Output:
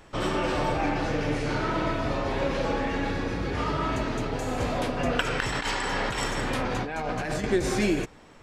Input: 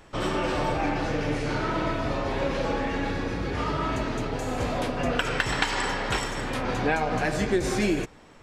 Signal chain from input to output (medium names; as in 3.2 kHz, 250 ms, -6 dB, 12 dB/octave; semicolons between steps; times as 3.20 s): 5.40–7.44 s: compressor with a negative ratio -29 dBFS, ratio -1